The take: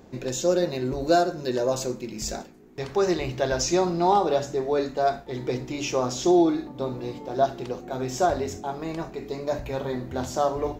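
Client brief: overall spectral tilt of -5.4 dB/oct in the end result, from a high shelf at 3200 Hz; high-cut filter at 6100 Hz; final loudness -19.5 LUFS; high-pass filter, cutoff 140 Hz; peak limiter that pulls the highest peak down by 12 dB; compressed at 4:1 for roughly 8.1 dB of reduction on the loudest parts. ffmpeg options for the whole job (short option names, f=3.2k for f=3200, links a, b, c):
-af "highpass=140,lowpass=6.1k,highshelf=f=3.2k:g=-8,acompressor=threshold=-25dB:ratio=4,volume=16.5dB,alimiter=limit=-10.5dB:level=0:latency=1"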